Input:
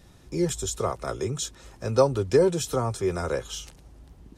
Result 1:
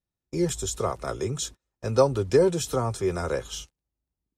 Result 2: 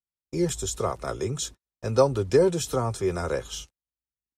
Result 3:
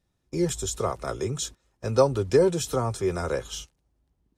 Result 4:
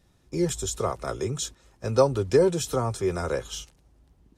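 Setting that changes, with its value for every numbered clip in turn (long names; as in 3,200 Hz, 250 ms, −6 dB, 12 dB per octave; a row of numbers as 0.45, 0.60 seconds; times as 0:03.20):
noise gate, range: −37, −54, −22, −10 decibels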